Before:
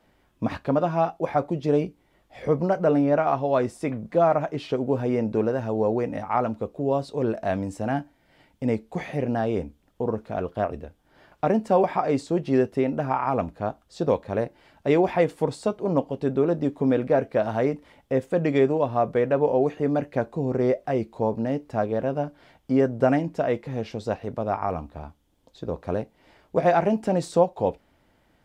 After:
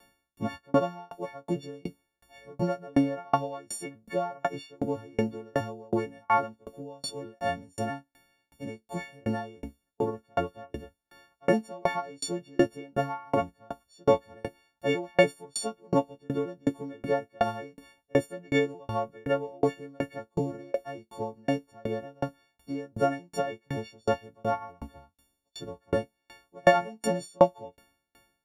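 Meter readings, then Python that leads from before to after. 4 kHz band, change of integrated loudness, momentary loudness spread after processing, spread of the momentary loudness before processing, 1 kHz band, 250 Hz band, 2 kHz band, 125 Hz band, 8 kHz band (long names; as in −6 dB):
+3.0 dB, −5.5 dB, 16 LU, 10 LU, −4.5 dB, −6.5 dB, −0.5 dB, −7.5 dB, can't be measured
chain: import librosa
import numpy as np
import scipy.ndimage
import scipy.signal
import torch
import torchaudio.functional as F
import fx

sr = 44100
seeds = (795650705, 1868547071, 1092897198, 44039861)

y = fx.freq_snap(x, sr, grid_st=4)
y = fx.tremolo_decay(y, sr, direction='decaying', hz=2.7, depth_db=36)
y = y * 10.0 ** (2.5 / 20.0)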